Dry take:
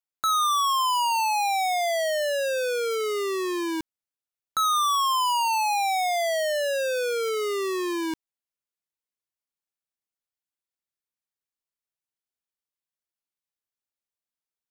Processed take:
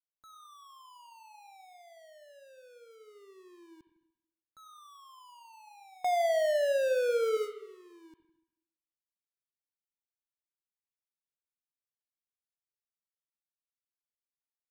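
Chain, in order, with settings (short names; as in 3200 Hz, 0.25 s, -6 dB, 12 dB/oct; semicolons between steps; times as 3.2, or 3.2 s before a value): low shelf 330 Hz +11.5 dB; limiter -30 dBFS, peak gain reduction 13 dB; 6.04–7.37 bell 690 Hz +7 dB 2.4 oct; gate with hold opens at -25 dBFS; reverb RT60 0.85 s, pre-delay 63 ms, DRR 9.5 dB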